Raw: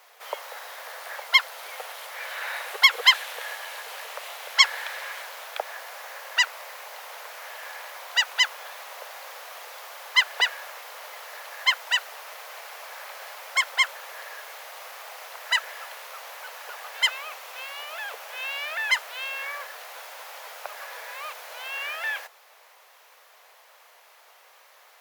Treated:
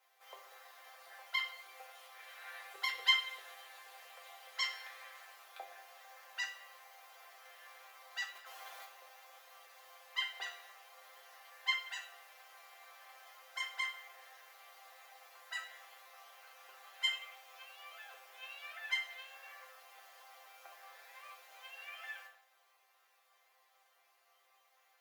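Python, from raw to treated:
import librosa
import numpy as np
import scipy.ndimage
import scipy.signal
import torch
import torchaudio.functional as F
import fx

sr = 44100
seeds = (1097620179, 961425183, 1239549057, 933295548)

y = fx.over_compress(x, sr, threshold_db=-34.0, ratio=-1.0, at=(8.35, 8.85))
y = fx.resonator_bank(y, sr, root=60, chord='sus4', decay_s=0.25)
y = fx.room_shoebox(y, sr, seeds[0], volume_m3=280.0, walls='mixed', distance_m=0.65)
y = y * librosa.db_to_amplitude(-1.0)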